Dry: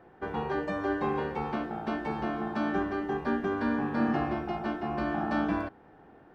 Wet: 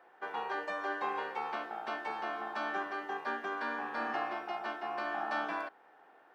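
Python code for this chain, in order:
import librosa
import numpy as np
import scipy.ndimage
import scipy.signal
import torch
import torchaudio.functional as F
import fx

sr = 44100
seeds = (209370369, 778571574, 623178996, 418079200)

y = scipy.signal.sosfilt(scipy.signal.butter(2, 740.0, 'highpass', fs=sr, output='sos'), x)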